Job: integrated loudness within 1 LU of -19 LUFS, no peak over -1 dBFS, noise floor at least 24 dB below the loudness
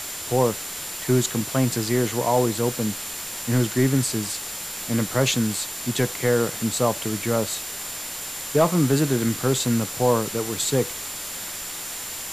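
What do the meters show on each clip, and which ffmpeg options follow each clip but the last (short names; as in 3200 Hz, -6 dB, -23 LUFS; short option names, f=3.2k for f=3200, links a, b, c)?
steady tone 7200 Hz; tone level -37 dBFS; noise floor -33 dBFS; noise floor target -48 dBFS; loudness -23.5 LUFS; peak -7.5 dBFS; loudness target -19.0 LUFS
-> -af "bandreject=f=7.2k:w=30"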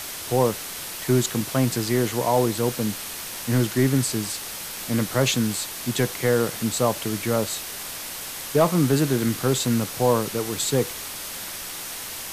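steady tone none; noise floor -34 dBFS; noise floor target -48 dBFS
-> -af "afftdn=nr=14:nf=-34"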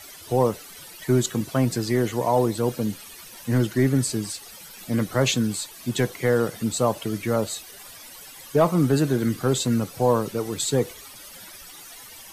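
noise floor -44 dBFS; noise floor target -48 dBFS
-> -af "afftdn=nr=6:nf=-44"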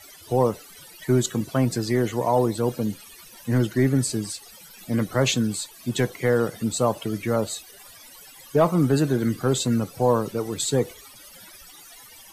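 noise floor -47 dBFS; noise floor target -48 dBFS
-> -af "afftdn=nr=6:nf=-47"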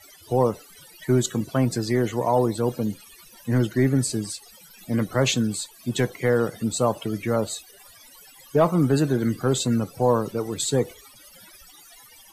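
noise floor -50 dBFS; loudness -24.0 LUFS; peak -8.0 dBFS; loudness target -19.0 LUFS
-> -af "volume=5dB"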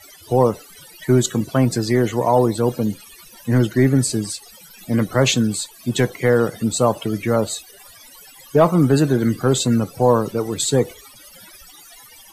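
loudness -19.0 LUFS; peak -3.0 dBFS; noise floor -45 dBFS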